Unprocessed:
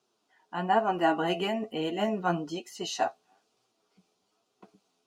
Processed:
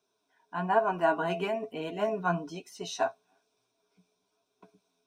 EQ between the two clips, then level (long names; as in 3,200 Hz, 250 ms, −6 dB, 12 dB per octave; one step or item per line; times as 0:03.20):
EQ curve with evenly spaced ripples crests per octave 1.6, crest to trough 10 dB
dynamic equaliser 1,100 Hz, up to +5 dB, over −40 dBFS, Q 1.6
−4.0 dB